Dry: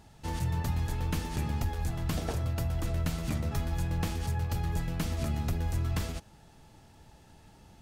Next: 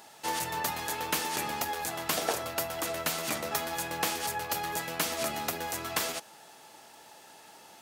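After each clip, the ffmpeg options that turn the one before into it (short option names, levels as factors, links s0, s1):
-af "highpass=520,highshelf=f=11000:g=8,volume=2.82"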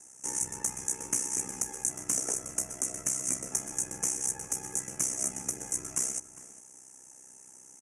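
-filter_complex "[0:a]aeval=exprs='val(0)*sin(2*PI*32*n/s)':c=same,firequalizer=gain_entry='entry(290,0);entry(680,-13);entry(1000,-12);entry(2100,-9);entry(4100,-30);entry(6000,12);entry(9900,11);entry(15000,-28)':delay=0.05:min_phase=1,asplit=2[s0][s1];[s1]adelay=402.3,volume=0.2,highshelf=f=4000:g=-9.05[s2];[s0][s2]amix=inputs=2:normalize=0"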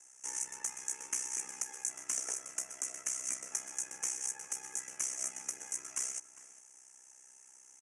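-af "bandpass=f=2800:t=q:w=0.66:csg=0"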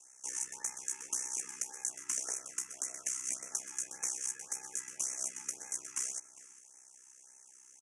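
-af "afftfilt=real='re*(1-between(b*sr/1024,560*pow(3800/560,0.5+0.5*sin(2*PI*1.8*pts/sr))/1.41,560*pow(3800/560,0.5+0.5*sin(2*PI*1.8*pts/sr))*1.41))':imag='im*(1-between(b*sr/1024,560*pow(3800/560,0.5+0.5*sin(2*PI*1.8*pts/sr))/1.41,560*pow(3800/560,0.5+0.5*sin(2*PI*1.8*pts/sr))*1.41))':win_size=1024:overlap=0.75"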